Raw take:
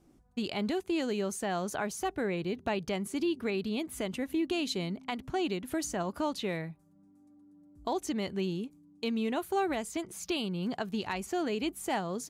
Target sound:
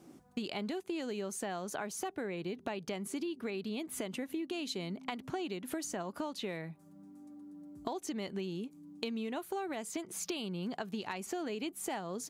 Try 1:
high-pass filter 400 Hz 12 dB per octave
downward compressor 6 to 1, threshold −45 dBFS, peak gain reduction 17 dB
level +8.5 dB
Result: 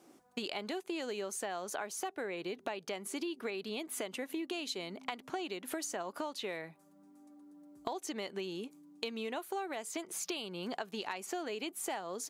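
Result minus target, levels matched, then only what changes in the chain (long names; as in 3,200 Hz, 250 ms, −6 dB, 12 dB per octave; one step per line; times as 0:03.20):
125 Hz band −8.5 dB
change: high-pass filter 160 Hz 12 dB per octave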